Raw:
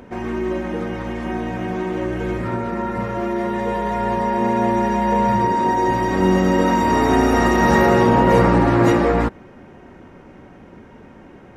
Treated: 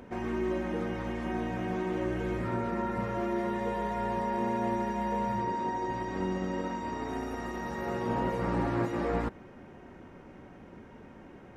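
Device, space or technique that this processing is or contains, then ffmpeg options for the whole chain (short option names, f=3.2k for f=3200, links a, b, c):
de-esser from a sidechain: -filter_complex "[0:a]asplit=2[a][b];[b]highpass=5.6k,apad=whole_len=510152[c];[a][c]sidechaincompress=threshold=-51dB:ratio=8:attack=2.1:release=27,asettb=1/sr,asplit=3[d][e][f];[d]atrim=end=5.394[g];[e]atrim=start=5.39:end=7.09,asetpts=PTS-STARTPTS,afade=t=in:d=0.004:c=qsin,afade=t=out:st=1.696:d=0.004:c=qsin,lowpass=7.9k[h];[f]atrim=start=7.086[i];[g][h]acrossfade=d=0.004:c1=hsin:c2=qsin[j];[j][i]acrossfade=d=0.004:c1=qsin:c2=hsin,volume=-7dB"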